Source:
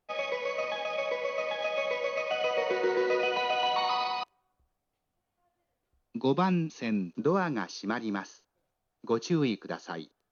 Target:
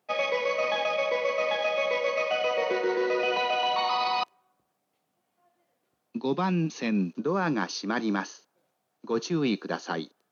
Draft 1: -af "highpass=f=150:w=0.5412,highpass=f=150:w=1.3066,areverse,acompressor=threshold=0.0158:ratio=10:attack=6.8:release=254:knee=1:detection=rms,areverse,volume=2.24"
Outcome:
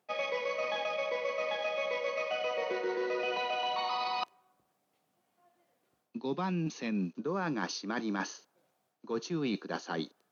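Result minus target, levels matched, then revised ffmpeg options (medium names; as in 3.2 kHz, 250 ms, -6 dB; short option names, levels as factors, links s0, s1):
compression: peak gain reduction +7 dB
-af "highpass=f=150:w=0.5412,highpass=f=150:w=1.3066,areverse,acompressor=threshold=0.0376:ratio=10:attack=6.8:release=254:knee=1:detection=rms,areverse,volume=2.24"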